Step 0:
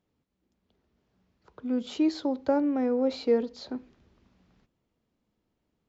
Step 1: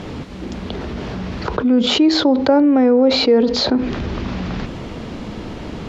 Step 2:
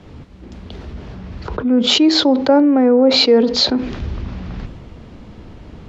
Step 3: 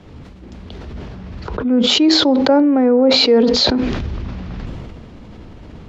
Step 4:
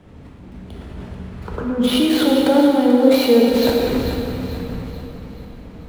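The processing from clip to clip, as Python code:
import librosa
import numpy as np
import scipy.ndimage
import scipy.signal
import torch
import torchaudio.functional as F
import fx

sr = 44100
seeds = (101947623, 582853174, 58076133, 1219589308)

y1 = scipy.signal.sosfilt(scipy.signal.butter(2, 4800.0, 'lowpass', fs=sr, output='sos'), x)
y1 = fx.env_flatten(y1, sr, amount_pct=70)
y1 = y1 * librosa.db_to_amplitude(9.0)
y2 = fx.band_widen(y1, sr, depth_pct=70)
y3 = fx.sustainer(y2, sr, db_per_s=28.0)
y3 = y3 * librosa.db_to_amplitude(-1.0)
y4 = scipy.signal.medfilt(y3, 9)
y4 = fx.echo_feedback(y4, sr, ms=437, feedback_pct=46, wet_db=-11)
y4 = fx.rev_plate(y4, sr, seeds[0], rt60_s=2.3, hf_ratio=0.95, predelay_ms=0, drr_db=-1.5)
y4 = y4 * librosa.db_to_amplitude(-5.0)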